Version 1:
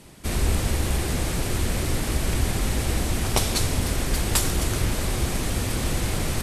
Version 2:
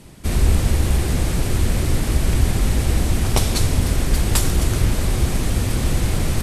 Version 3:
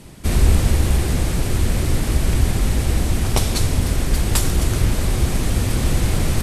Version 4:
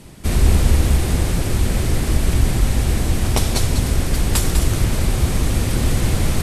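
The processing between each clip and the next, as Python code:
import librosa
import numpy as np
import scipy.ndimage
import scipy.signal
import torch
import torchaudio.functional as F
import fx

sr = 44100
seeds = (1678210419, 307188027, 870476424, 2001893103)

y1 = fx.low_shelf(x, sr, hz=250.0, db=6.5)
y1 = y1 * 10.0 ** (1.0 / 20.0)
y2 = fx.rider(y1, sr, range_db=10, speed_s=2.0)
y3 = y2 + 10.0 ** (-7.0 / 20.0) * np.pad(y2, (int(199 * sr / 1000.0), 0))[:len(y2)]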